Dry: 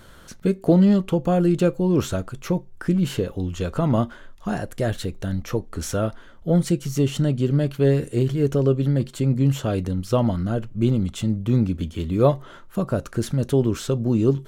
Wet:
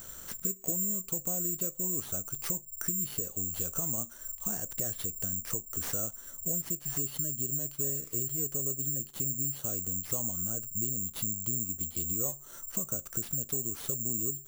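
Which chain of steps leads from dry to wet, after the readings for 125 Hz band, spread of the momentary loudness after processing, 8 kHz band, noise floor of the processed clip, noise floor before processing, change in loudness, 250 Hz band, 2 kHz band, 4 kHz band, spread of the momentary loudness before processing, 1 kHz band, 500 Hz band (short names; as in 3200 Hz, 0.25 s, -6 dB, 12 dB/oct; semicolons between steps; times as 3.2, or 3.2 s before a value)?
-20.0 dB, 4 LU, +9.5 dB, -50 dBFS, -45 dBFS, -8.5 dB, -20.5 dB, -14.0 dB, -12.0 dB, 9 LU, -19.0 dB, -21.0 dB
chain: compressor 5:1, threshold -33 dBFS, peak gain reduction 19 dB; careless resampling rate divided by 6×, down none, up zero stuff; gain -6.5 dB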